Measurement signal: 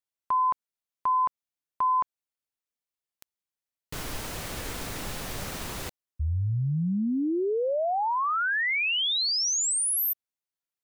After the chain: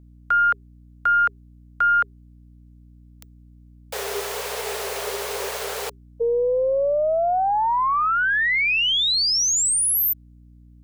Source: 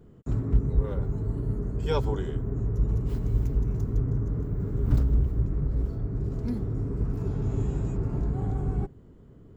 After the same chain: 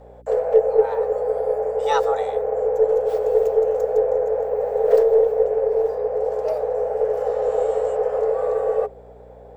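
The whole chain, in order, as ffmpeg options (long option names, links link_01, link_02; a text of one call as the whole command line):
ffmpeg -i in.wav -af "afreqshift=390,aeval=exprs='val(0)+0.00224*(sin(2*PI*60*n/s)+sin(2*PI*2*60*n/s)/2+sin(2*PI*3*60*n/s)/3+sin(2*PI*4*60*n/s)/4+sin(2*PI*5*60*n/s)/5)':channel_layout=same,aeval=exprs='0.335*(cos(1*acos(clip(val(0)/0.335,-1,1)))-cos(1*PI/2))+0.00376*(cos(6*acos(clip(val(0)/0.335,-1,1)))-cos(6*PI/2))':channel_layout=same,volume=6dB" out.wav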